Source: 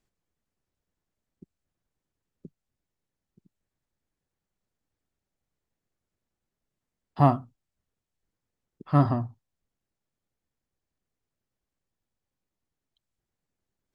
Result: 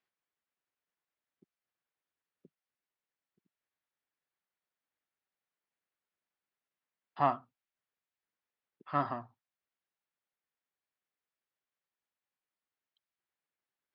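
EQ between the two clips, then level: band-pass 1600 Hz, Q 0.65; air absorption 170 m; high shelf 2100 Hz +8.5 dB; -3.0 dB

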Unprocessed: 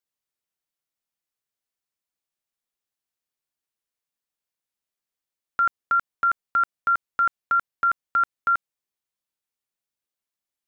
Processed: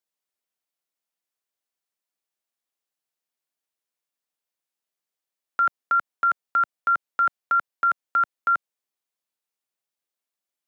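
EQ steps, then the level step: Bessel high-pass 210 Hz; bell 660 Hz +2.5 dB; 0.0 dB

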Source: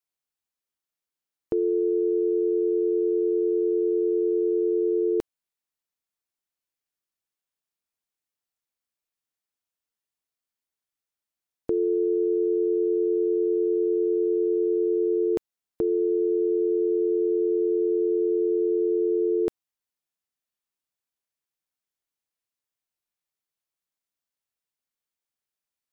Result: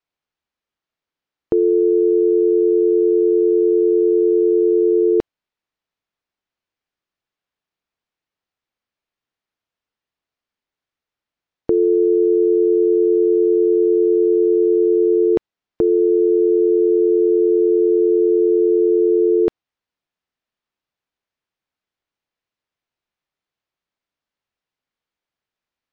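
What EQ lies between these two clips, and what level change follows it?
air absorption 180 m; +9.0 dB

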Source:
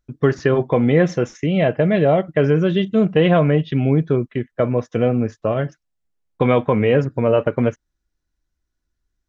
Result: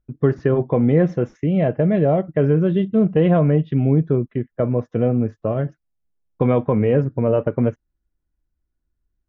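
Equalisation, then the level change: LPF 1000 Hz 6 dB/oct; low shelf 350 Hz +4 dB; -2.5 dB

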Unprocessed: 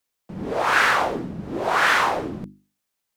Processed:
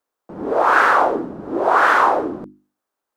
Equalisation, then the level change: band shelf 630 Hz +13.5 dB 2.9 oct; -6.5 dB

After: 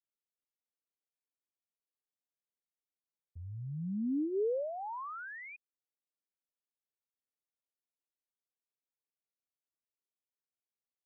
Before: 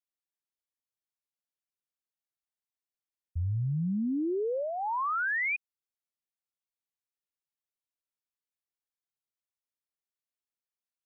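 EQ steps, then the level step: band-pass 370 Hz, Q 1.7; bell 350 Hz -10.5 dB 0.21 oct; +2.0 dB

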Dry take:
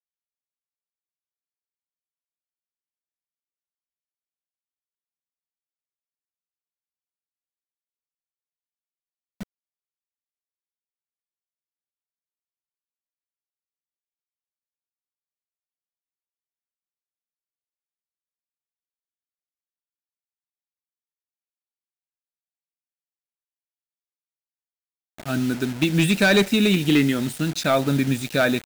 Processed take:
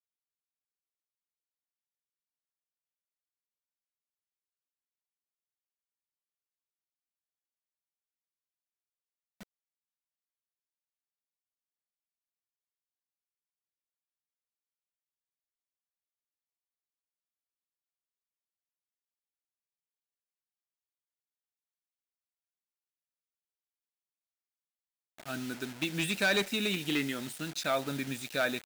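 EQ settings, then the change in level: low shelf 340 Hz -11.5 dB; -8.0 dB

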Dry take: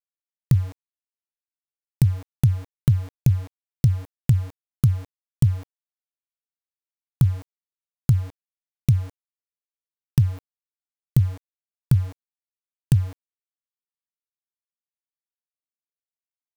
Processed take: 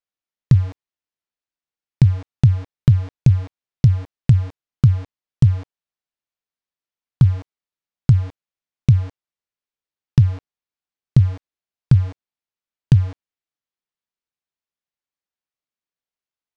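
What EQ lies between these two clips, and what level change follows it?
Bessel low-pass 4800 Hz, order 4; +5.0 dB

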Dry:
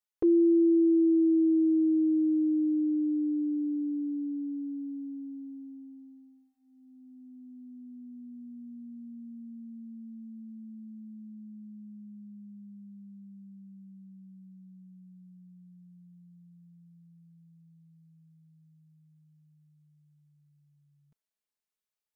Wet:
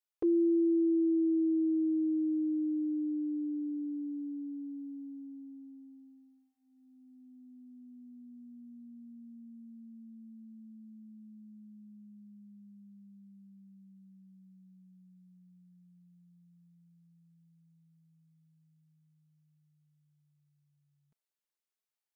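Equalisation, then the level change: low shelf 180 Hz -8.5 dB; -3.0 dB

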